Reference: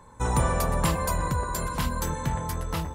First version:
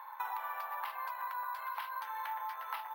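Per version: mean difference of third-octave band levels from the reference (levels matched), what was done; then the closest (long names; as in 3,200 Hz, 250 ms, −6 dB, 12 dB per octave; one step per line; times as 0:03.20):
18.5 dB: Chebyshev high-pass filter 830 Hz, order 4
downward compressor 16 to 1, threshold −43 dBFS, peak gain reduction 18.5 dB
high-frequency loss of the air 320 metres
bad sample-rate conversion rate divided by 3×, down filtered, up hold
level +9 dB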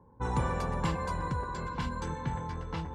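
5.0 dB: reversed playback
upward compression, threshold −31 dBFS
reversed playback
high-frequency loss of the air 100 metres
low-pass that shuts in the quiet parts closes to 580 Hz, open at −23 dBFS
notch comb filter 630 Hz
level −4.5 dB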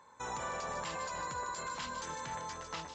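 8.5 dB: high-pass filter 1,000 Hz 6 dB per octave
brickwall limiter −26.5 dBFS, peak gain reduction 9.5 dB
delay with a high-pass on its return 152 ms, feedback 55%, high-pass 3,600 Hz, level −6.5 dB
level −3 dB
Ogg Vorbis 96 kbit/s 16,000 Hz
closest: second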